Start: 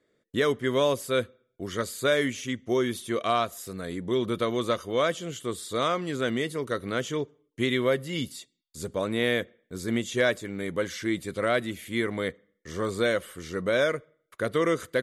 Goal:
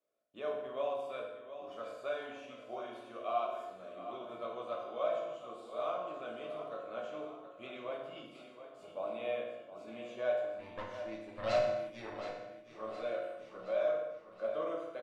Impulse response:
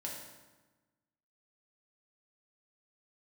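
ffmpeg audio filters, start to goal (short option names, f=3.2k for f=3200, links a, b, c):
-filter_complex "[0:a]asplit=3[a][b][c];[a]bandpass=f=730:t=q:w=8,volume=0dB[d];[b]bandpass=f=1.09k:t=q:w=8,volume=-6dB[e];[c]bandpass=f=2.44k:t=q:w=8,volume=-9dB[f];[d][e][f]amix=inputs=3:normalize=0,asettb=1/sr,asplit=3[g][h][i];[g]atrim=end=10.474[j];[h]atrim=start=10.47:end=12.13,asetpts=PTS-STARTPTS,afade=t=in:d=0.004:c=qsin,afade=t=out:st=1.656:d=0.004:c=qsin,aeval=exprs='0.075*(cos(1*acos(clip(val(0)/0.075,-1,1)))-cos(1*PI/2))+0.0168*(cos(8*acos(clip(val(0)/0.075,-1,1)))-cos(8*PI/2))':c=same[k];[i]atrim=start=12.126[l];[j][k]acrossfade=d=0.004:c1=hsin:c2=qsin[m];[m][l]acrossfade=d=0.004:c1=qsin:c2=hsin,aecho=1:1:719|1438|2157|2876|3595|4314:0.266|0.146|0.0805|0.0443|0.0243|0.0134[n];[1:a]atrim=start_sample=2205,afade=t=out:st=0.38:d=0.01,atrim=end_sample=17199[o];[n][o]afir=irnorm=-1:irlink=0" -ar 48000 -c:a libopus -b:a 48k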